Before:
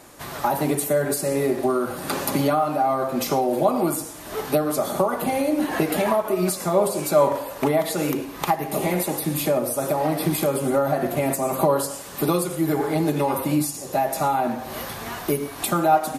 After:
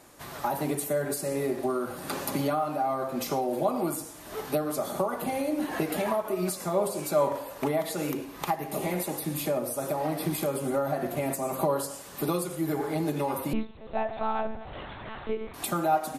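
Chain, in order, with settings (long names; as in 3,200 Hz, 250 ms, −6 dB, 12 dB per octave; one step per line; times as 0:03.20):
0:13.53–0:15.54: one-pitch LPC vocoder at 8 kHz 220 Hz
level −7 dB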